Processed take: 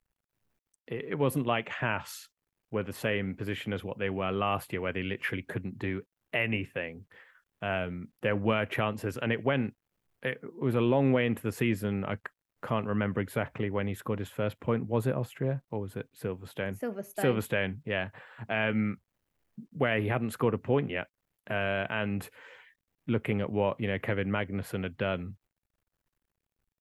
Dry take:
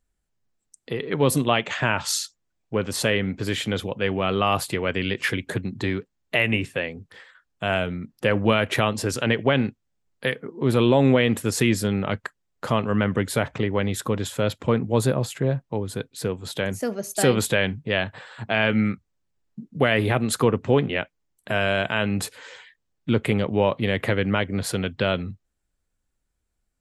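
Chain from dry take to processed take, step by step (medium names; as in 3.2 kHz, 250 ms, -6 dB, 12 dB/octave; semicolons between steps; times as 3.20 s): high-order bell 5.9 kHz -13 dB; word length cut 12-bit, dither none; trim -7.5 dB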